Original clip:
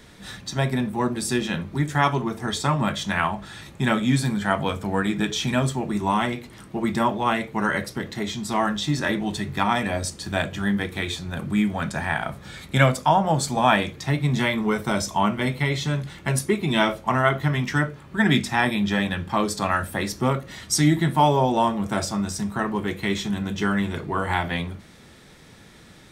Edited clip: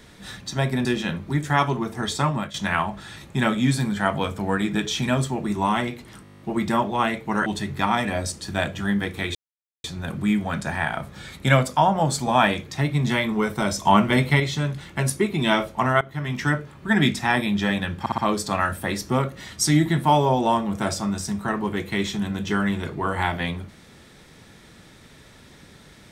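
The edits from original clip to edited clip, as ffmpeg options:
ffmpeg -i in.wav -filter_complex "[0:a]asplit=20[link_01][link_02][link_03][link_04][link_05][link_06][link_07][link_08][link_09][link_10][link_11][link_12][link_13][link_14][link_15][link_16][link_17][link_18][link_19][link_20];[link_01]atrim=end=0.852[link_21];[link_02]atrim=start=1.298:end=2.99,asetpts=PTS-STARTPTS,afade=type=out:start_time=1.422:duration=0.27:silence=0.211349[link_22];[link_03]atrim=start=2.99:end=6.702,asetpts=PTS-STARTPTS,afade=type=in:duration=0.004:curve=hsin:silence=0.211349[link_23];[link_04]atrim=start=6.678:end=6.702[link_24];[link_05]atrim=start=6.678:end=6.702[link_25];[link_06]atrim=start=6.678:end=6.702[link_26];[link_07]atrim=start=6.678:end=6.702[link_27];[link_08]atrim=start=6.678:end=6.702[link_28];[link_09]atrim=start=6.678:end=6.702[link_29];[link_10]atrim=start=6.678:end=6.702[link_30];[link_11]atrim=start=6.678:end=6.702[link_31];[link_12]atrim=start=6.678:end=7.732[link_32];[link_13]atrim=start=9.238:end=11.13,asetpts=PTS-STARTPTS,afade=type=out:start_time=1.888:duration=0.004:curve=hsin,apad=pad_dur=0.49[link_33];[link_14]atrim=start=11.13:end=15.142,asetpts=PTS-STARTPTS,afade=type=in:duration=0.004:curve=hsin[link_34];[link_15]atrim=start=15.138:end=15.692,asetpts=PTS-STARTPTS,volume=5dB[link_35];[link_16]atrim=start=15.688:end=17.3,asetpts=PTS-STARTPTS,afade=type=out:start_time=1.608:duration=0.004:curve=hsin:silence=0.0891251[link_36];[link_17]atrim=start=17.3:end=19.352,asetpts=PTS-STARTPTS,afade=type=in:duration=0.44:silence=0.0891251[link_37];[link_18]atrim=start=19.288:end=19.352[link_38];[link_19]atrim=start=19.288:end=19.352[link_39];[link_20]atrim=start=19.288[link_40];[link_22][link_23]concat=n=2:v=0:a=1[link_41];[link_21][link_41]acrossfade=duration=0.004:curve1=hsin:curve2=hsin[link_42];[link_42][link_24]acrossfade=duration=0.004:curve1=hsin:curve2=hsin[link_43];[link_43][link_25]acrossfade=duration=0.004:curve1=hsin:curve2=hsin[link_44];[link_44][link_26]acrossfade=duration=0.004:curve1=hsin:curve2=hsin[link_45];[link_45][link_27]acrossfade=duration=0.004:curve1=hsin:curve2=hsin[link_46];[link_46][link_28]acrossfade=duration=0.004:curve1=hsin:curve2=hsin[link_47];[link_47][link_29]acrossfade=duration=0.004:curve1=hsin:curve2=hsin[link_48];[link_48][link_30]acrossfade=duration=0.004:curve1=hsin:curve2=hsin[link_49];[link_49][link_31]acrossfade=duration=0.004:curve1=hsin:curve2=hsin[link_50];[link_50][link_32]acrossfade=duration=0.004:curve1=hsin:curve2=hsin[link_51];[link_33][link_34]concat=n=2:v=0:a=1[link_52];[link_51][link_52]acrossfade=duration=0.004:curve1=hsin:curve2=hsin[link_53];[link_53][link_35]acrossfade=duration=0.004:curve1=hsin:curve2=hsin[link_54];[link_36][link_37]concat=n=2:v=0:a=1[link_55];[link_54][link_55]acrossfade=duration=0.004:curve1=hsin:curve2=hsin[link_56];[link_56][link_38]acrossfade=duration=0.004:curve1=hsin:curve2=hsin[link_57];[link_57][link_39]acrossfade=duration=0.004:curve1=hsin:curve2=hsin[link_58];[link_58][link_40]acrossfade=duration=0.004:curve1=hsin:curve2=hsin" out.wav

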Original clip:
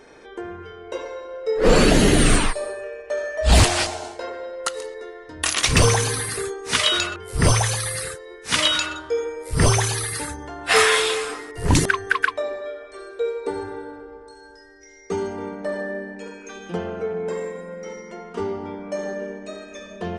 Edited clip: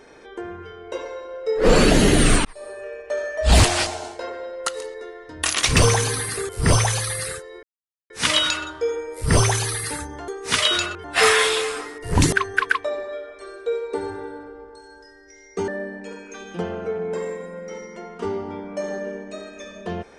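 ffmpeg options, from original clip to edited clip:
ffmpeg -i in.wav -filter_complex "[0:a]asplit=7[link_01][link_02][link_03][link_04][link_05][link_06][link_07];[link_01]atrim=end=2.45,asetpts=PTS-STARTPTS,afade=type=out:start_time=2.446:duration=0.004:curve=hsin[link_08];[link_02]atrim=start=2.45:end=6.492,asetpts=PTS-STARTPTS,afade=type=in:duration=0.48[link_09];[link_03]atrim=start=7.248:end=8.39,asetpts=PTS-STARTPTS,afade=type=out:start_time=1.138:duration=0.004:curve=hsin,apad=pad_dur=0.47[link_10];[link_04]atrim=start=8.39:end=10.572,asetpts=PTS-STARTPTS,afade=type=in:duration=0.004:curve=hsin[link_11];[link_05]atrim=start=6.488:end=7.252[link_12];[link_06]atrim=start=10.568:end=15.212[link_13];[link_07]atrim=start=15.828[link_14];[link_08][link_09]concat=n=2:v=0:a=1[link_15];[link_10][link_11]concat=n=2:v=0:a=1[link_16];[link_15][link_16]acrossfade=duration=0.004:curve1=hsin:curve2=hsin[link_17];[link_17][link_12]acrossfade=duration=0.004:curve1=hsin:curve2=hsin[link_18];[link_18][link_13]acrossfade=duration=0.004:curve1=hsin:curve2=hsin[link_19];[link_19][link_14]acrossfade=duration=0.004:curve1=hsin:curve2=hsin" out.wav

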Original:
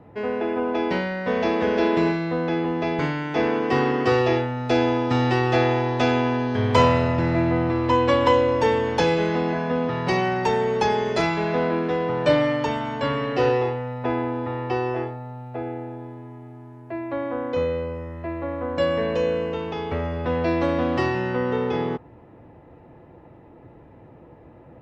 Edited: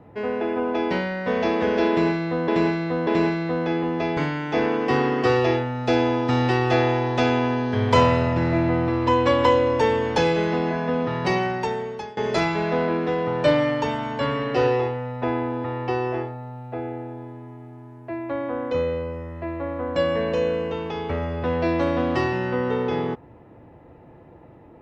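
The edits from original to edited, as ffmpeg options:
ffmpeg -i in.wav -filter_complex "[0:a]asplit=4[link_01][link_02][link_03][link_04];[link_01]atrim=end=2.482[link_05];[link_02]atrim=start=1.888:end=2.482[link_06];[link_03]atrim=start=1.888:end=10.99,asetpts=PTS-STARTPTS,afade=type=out:start_time=8.262:duration=0.84:silence=0.0707946[link_07];[link_04]atrim=start=10.99,asetpts=PTS-STARTPTS,afade=type=in:duration=0.004:curve=hsin:silence=0.0707946[link_08];[link_05][link_06]acrossfade=duration=0.004:curve1=hsin:curve2=hsin[link_09];[link_07][link_08]concat=n=2:v=0:a=1[link_10];[link_09][link_10]acrossfade=duration=0.004:curve1=hsin:curve2=hsin" out.wav

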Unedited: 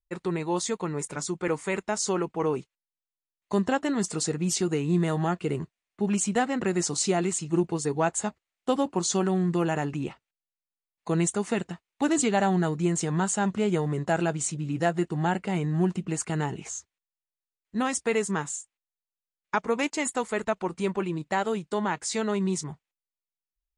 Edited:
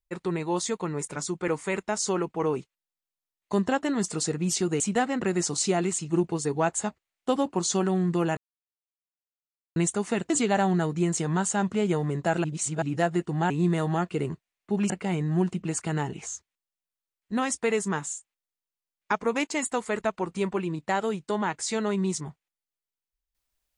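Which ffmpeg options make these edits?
ffmpeg -i in.wav -filter_complex "[0:a]asplit=9[link_01][link_02][link_03][link_04][link_05][link_06][link_07][link_08][link_09];[link_01]atrim=end=4.802[link_10];[link_02]atrim=start=6.198:end=9.77,asetpts=PTS-STARTPTS,afade=type=out:start_time=3.568:duration=0.004:curve=hsin[link_11];[link_03]atrim=start=9.77:end=11.16,asetpts=PTS-STARTPTS,volume=0[link_12];[link_04]atrim=start=11.16:end=11.702,asetpts=PTS-STARTPTS,afade=type=in:duration=0.004:curve=hsin[link_13];[link_05]atrim=start=12.128:end=14.272[link_14];[link_06]atrim=start=14.268:end=14.652,asetpts=PTS-STARTPTS,areverse[link_15];[link_07]atrim=start=14.648:end=15.332[link_16];[link_08]atrim=start=4.798:end=6.202[link_17];[link_09]atrim=start=15.328[link_18];[link_11][link_12][link_13]concat=n=3:v=0:a=1[link_19];[link_10][link_19]acrossfade=duration=0.004:curve1=hsin:curve2=hsin[link_20];[link_20][link_14]acrossfade=duration=0.004:curve1=hsin:curve2=hsin[link_21];[link_21][link_15]acrossfade=duration=0.004:curve1=hsin:curve2=hsin[link_22];[link_22][link_16]acrossfade=duration=0.004:curve1=hsin:curve2=hsin[link_23];[link_23][link_17]acrossfade=duration=0.004:curve1=hsin:curve2=hsin[link_24];[link_24][link_18]acrossfade=duration=0.004:curve1=hsin:curve2=hsin" out.wav

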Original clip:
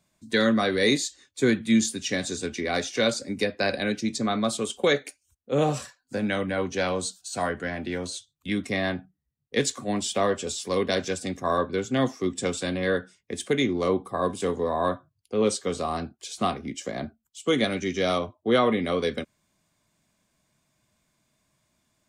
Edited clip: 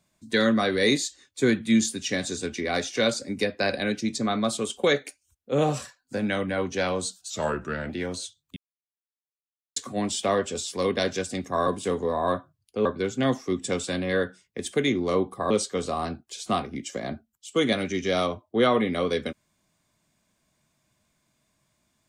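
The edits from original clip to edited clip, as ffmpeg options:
ffmpeg -i in.wav -filter_complex "[0:a]asplit=8[link_01][link_02][link_03][link_04][link_05][link_06][link_07][link_08];[link_01]atrim=end=7.304[link_09];[link_02]atrim=start=7.3:end=7.81,asetpts=PTS-STARTPTS,asetrate=37926,aresample=44100,atrim=end_sample=26152,asetpts=PTS-STARTPTS[link_10];[link_03]atrim=start=7.806:end=8.48,asetpts=PTS-STARTPTS,afade=type=out:start_time=0.67:duration=0.004:curve=hsin[link_11];[link_04]atrim=start=8.48:end=9.68,asetpts=PTS-STARTPTS,volume=0[link_12];[link_05]atrim=start=9.68:end=11.592,asetpts=PTS-STARTPTS,afade=type=in:duration=0.004:curve=hsin[link_13];[link_06]atrim=start=14.238:end=15.422[link_14];[link_07]atrim=start=11.588:end=14.242[link_15];[link_08]atrim=start=15.418[link_16];[link_09][link_10]acrossfade=duration=0.004:curve1=hsin:curve2=hsin[link_17];[link_11][link_12][link_13]concat=n=3:v=0:a=1[link_18];[link_17][link_18]acrossfade=duration=0.004:curve1=hsin:curve2=hsin[link_19];[link_19][link_14]acrossfade=duration=0.004:curve1=hsin:curve2=hsin[link_20];[link_20][link_15]acrossfade=duration=0.004:curve1=hsin:curve2=hsin[link_21];[link_21][link_16]acrossfade=duration=0.004:curve1=hsin:curve2=hsin" out.wav

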